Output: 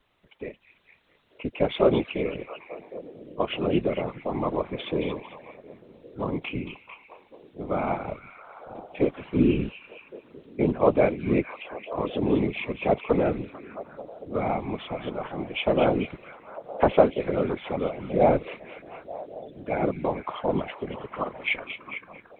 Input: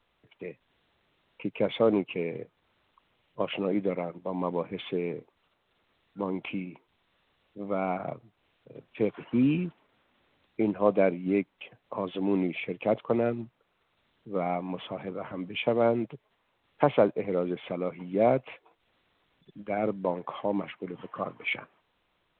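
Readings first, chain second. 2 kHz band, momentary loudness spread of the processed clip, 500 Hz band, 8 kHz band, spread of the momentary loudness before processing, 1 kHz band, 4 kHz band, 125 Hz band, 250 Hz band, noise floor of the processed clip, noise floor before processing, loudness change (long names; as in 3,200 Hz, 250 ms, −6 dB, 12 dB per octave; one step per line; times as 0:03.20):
+4.0 dB, 19 LU, +3.5 dB, can't be measured, 15 LU, +4.0 dB, +4.5 dB, +5.0 dB, +2.5 dB, −58 dBFS, −74 dBFS, +3.0 dB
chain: echo through a band-pass that steps 223 ms, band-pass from 3,300 Hz, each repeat −0.7 octaves, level −6 dB
random phases in short frames
level +3 dB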